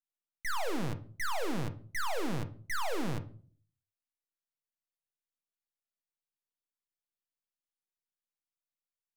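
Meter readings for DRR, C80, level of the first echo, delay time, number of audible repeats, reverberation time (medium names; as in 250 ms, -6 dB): 8.0 dB, 20.0 dB, no echo, no echo, no echo, 0.45 s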